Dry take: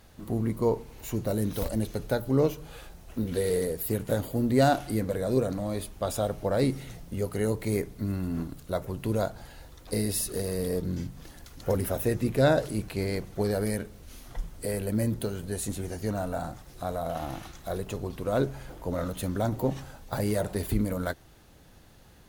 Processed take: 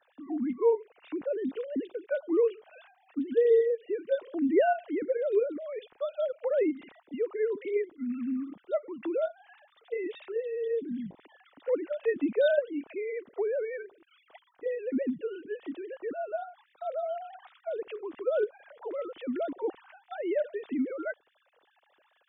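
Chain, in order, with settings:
three sine waves on the formant tracks
dynamic equaliser 1,000 Hz, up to −5 dB, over −41 dBFS, Q 0.82

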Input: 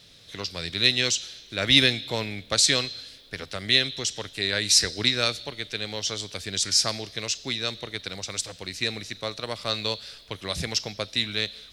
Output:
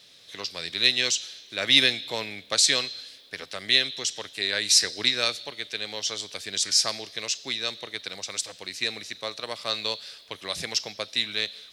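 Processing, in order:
high-pass filter 460 Hz 6 dB per octave
notch filter 1,400 Hz, Q 20

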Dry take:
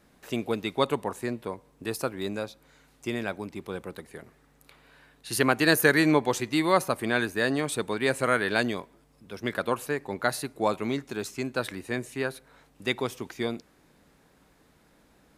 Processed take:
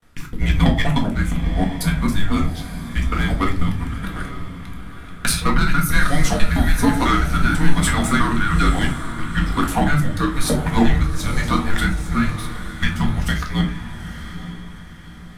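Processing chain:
reversed piece by piece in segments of 164 ms
high-pass filter 98 Hz 24 dB per octave
parametric band 1,800 Hz +5 dB 1 octave
noise gate with hold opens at −53 dBFS
leveller curve on the samples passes 1
downward compressor 6 to 1, threshold −21 dBFS, peak gain reduction 10.5 dB
rotating-speaker cabinet horn 1.1 Hz
soft clipping −19 dBFS, distortion −17 dB
frequency shifter −290 Hz
on a send: feedback delay with all-pass diffusion 861 ms, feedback 42%, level −11 dB
on the sum: rectangular room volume 260 cubic metres, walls furnished, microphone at 1.8 metres
level +8 dB

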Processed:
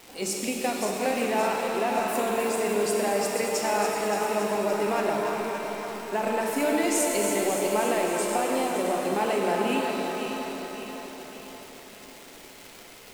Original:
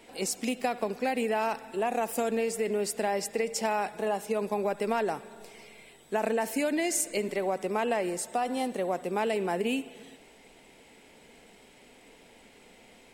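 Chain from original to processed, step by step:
feedback delay that plays each chunk backwards 285 ms, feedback 69%, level −7 dB
surface crackle 470 per second −36 dBFS
reverb with rising layers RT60 3 s, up +7 semitones, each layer −8 dB, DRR 0.5 dB

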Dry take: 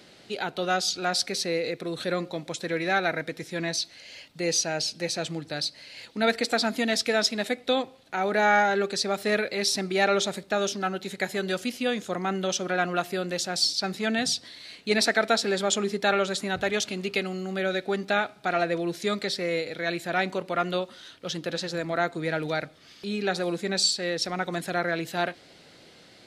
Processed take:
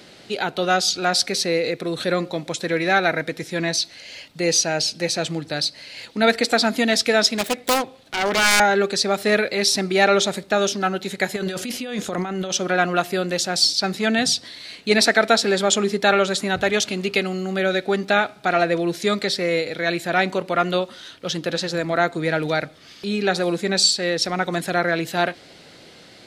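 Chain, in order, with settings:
0:07.38–0:08.60: phase distortion by the signal itself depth 0.79 ms
0:11.36–0:12.54: compressor whose output falls as the input rises −33 dBFS, ratio −1
level +6.5 dB

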